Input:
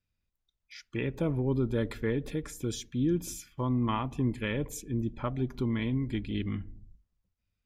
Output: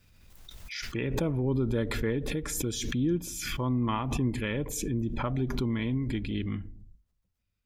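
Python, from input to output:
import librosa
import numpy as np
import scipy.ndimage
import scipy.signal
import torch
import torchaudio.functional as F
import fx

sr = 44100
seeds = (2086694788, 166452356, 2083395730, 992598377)

y = fx.pre_swell(x, sr, db_per_s=34.0)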